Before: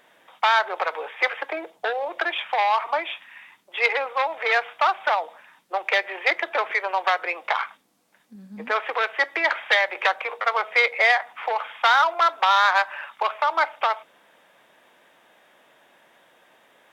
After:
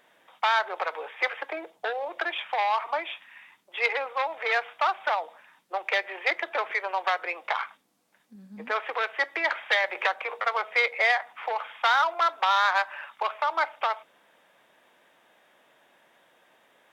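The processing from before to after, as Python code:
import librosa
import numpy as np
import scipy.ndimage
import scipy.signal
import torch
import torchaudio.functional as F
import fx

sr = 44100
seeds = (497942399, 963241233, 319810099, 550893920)

y = fx.band_squash(x, sr, depth_pct=40, at=(9.84, 10.62))
y = y * 10.0 ** (-4.5 / 20.0)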